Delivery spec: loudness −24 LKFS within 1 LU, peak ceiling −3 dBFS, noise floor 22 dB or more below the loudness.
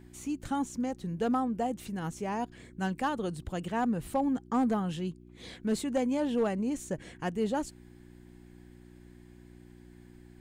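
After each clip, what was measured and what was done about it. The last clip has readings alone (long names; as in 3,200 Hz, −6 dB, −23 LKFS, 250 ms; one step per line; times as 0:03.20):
share of clipped samples 0.2%; peaks flattened at −21.0 dBFS; mains hum 60 Hz; hum harmonics up to 360 Hz; level of the hum −53 dBFS; integrated loudness −32.5 LKFS; sample peak −21.0 dBFS; target loudness −24.0 LKFS
→ clipped peaks rebuilt −21 dBFS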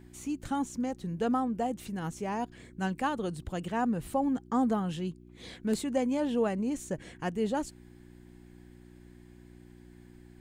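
share of clipped samples 0.0%; mains hum 60 Hz; hum harmonics up to 360 Hz; level of the hum −53 dBFS
→ hum removal 60 Hz, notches 6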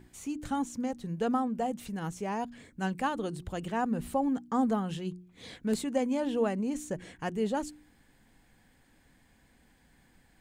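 mains hum none found; integrated loudness −32.5 LKFS; sample peak −14.0 dBFS; target loudness −24.0 LKFS
→ level +8.5 dB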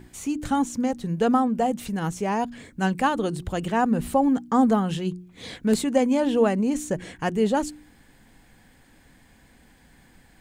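integrated loudness −24.0 LKFS; sample peak −5.5 dBFS; background noise floor −56 dBFS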